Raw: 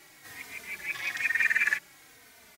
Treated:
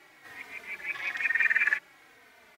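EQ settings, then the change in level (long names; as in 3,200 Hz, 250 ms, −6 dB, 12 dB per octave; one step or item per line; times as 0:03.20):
bass and treble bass −8 dB, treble −14 dB
+1.5 dB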